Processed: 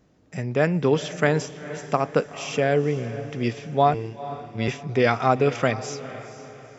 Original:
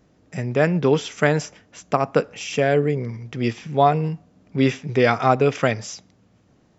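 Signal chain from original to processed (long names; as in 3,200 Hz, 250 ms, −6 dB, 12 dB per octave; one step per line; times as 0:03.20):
0:03.94–0:04.68: phases set to zero 112 Hz
feedback delay with all-pass diffusion 464 ms, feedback 43%, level −14 dB
level −2.5 dB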